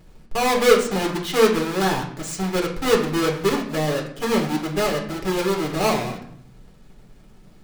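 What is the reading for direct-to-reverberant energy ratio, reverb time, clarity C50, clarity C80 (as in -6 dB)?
-1.5 dB, 0.70 s, 8.0 dB, 11.5 dB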